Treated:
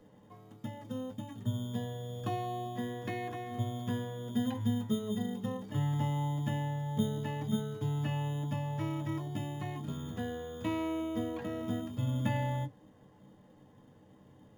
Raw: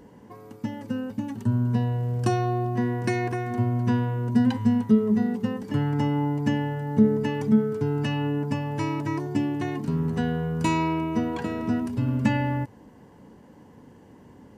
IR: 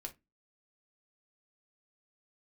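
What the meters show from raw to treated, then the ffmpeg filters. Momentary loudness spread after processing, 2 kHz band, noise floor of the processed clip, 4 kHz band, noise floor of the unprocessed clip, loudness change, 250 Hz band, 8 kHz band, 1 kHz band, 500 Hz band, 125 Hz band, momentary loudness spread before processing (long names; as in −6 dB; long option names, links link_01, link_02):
7 LU, −11.0 dB, −60 dBFS, −5.0 dB, −51 dBFS, −10.5 dB, −12.0 dB, can't be measured, −9.0 dB, −10.5 dB, −8.0 dB, 7 LU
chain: -filter_complex "[0:a]acrossover=split=3300[link_01][link_02];[link_02]acompressor=threshold=-54dB:ratio=4:attack=1:release=60[link_03];[link_01][link_03]amix=inputs=2:normalize=0,highshelf=frequency=5800:gain=-5,acrossover=split=310|1000[link_04][link_05][link_06];[link_04]acrusher=samples=13:mix=1:aa=0.000001[link_07];[link_07][link_05][link_06]amix=inputs=3:normalize=0[link_08];[1:a]atrim=start_sample=2205,asetrate=83790,aresample=44100[link_09];[link_08][link_09]afir=irnorm=-1:irlink=0"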